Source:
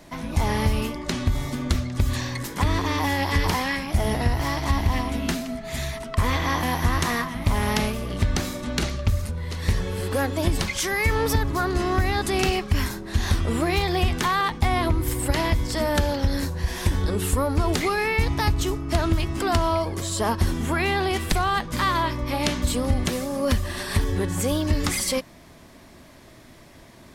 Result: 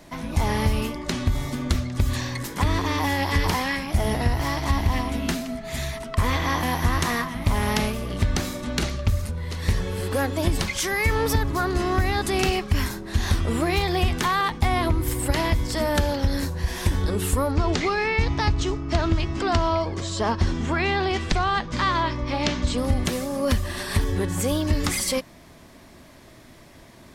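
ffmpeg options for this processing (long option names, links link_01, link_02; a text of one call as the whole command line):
ffmpeg -i in.wav -filter_complex "[0:a]asettb=1/sr,asplit=3[link_01][link_02][link_03];[link_01]atrim=end=17.514[link_04];[link_02]atrim=start=17.51:end=22.78,asetpts=PTS-STARTPTS,afade=type=in:duration=0.004:curve=qsin,afade=type=out:start_time=5.266:duration=0.004:curve=qsin,lowpass=frequency=6700:width=0.5412,lowpass=frequency=6700:width=1.3066[link_05];[link_03]atrim=start=22.776[link_06];[link_04][link_05]acrossfade=duration=0.004:curve1=hsin:curve2=qsin[link_07];[link_07][link_06]acrossfade=duration=0.004:curve1=qsin:curve2=hsin" out.wav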